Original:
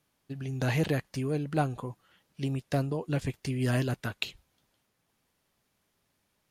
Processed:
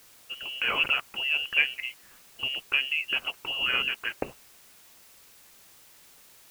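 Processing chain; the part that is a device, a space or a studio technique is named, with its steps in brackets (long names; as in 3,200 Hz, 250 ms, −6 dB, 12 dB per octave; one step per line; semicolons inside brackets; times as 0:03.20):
scrambled radio voice (band-pass filter 300–2,800 Hz; voice inversion scrambler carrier 3,100 Hz; white noise bed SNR 23 dB)
level +6 dB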